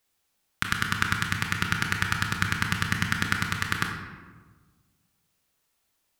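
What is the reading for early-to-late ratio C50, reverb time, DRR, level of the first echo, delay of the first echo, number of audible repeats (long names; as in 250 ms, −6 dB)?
4.5 dB, 1.4 s, 2.0 dB, no echo audible, no echo audible, no echo audible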